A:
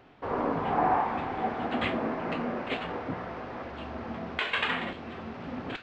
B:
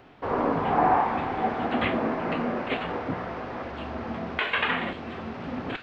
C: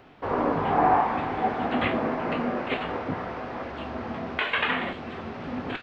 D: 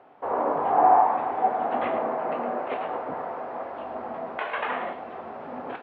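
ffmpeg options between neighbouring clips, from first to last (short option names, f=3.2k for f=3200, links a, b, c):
-filter_complex "[0:a]acrossover=split=3600[a][b];[b]acompressor=threshold=-55dB:ratio=4:attack=1:release=60[c];[a][c]amix=inputs=2:normalize=0,volume=4dB"
-filter_complex "[0:a]asplit=2[a][b];[b]adelay=20,volume=-11dB[c];[a][c]amix=inputs=2:normalize=0"
-filter_complex "[0:a]bandpass=f=730:t=q:w=1.5:csg=0,asplit=2[a][b];[b]aecho=0:1:109:0.316[c];[a][c]amix=inputs=2:normalize=0,volume=3.5dB"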